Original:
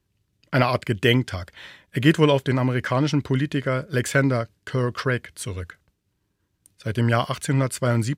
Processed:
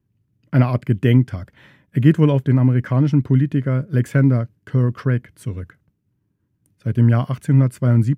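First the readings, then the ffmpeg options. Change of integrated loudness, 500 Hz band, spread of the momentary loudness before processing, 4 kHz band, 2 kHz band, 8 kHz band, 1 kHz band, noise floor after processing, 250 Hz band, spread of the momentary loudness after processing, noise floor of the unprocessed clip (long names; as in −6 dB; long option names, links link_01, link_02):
+5.0 dB, −2.0 dB, 13 LU, below −10 dB, −6.5 dB, below −10 dB, −5.0 dB, −70 dBFS, +5.5 dB, 10 LU, −73 dBFS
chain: -af "equalizer=frequency=125:width_type=o:width=1:gain=12,equalizer=frequency=250:width_type=o:width=1:gain=9,equalizer=frequency=4000:width_type=o:width=1:gain=-8,equalizer=frequency=8000:width_type=o:width=1:gain=-6,volume=-5dB"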